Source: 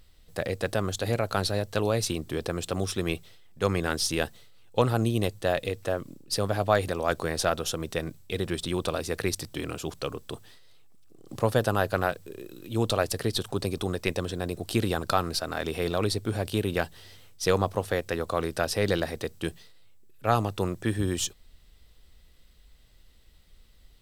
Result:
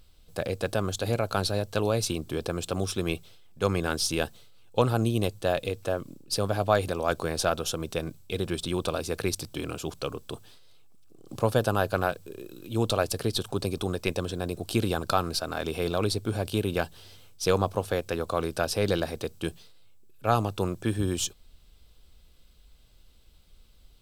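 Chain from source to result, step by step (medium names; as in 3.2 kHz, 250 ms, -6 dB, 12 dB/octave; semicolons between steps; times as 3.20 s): band-stop 1.9 kHz, Q 5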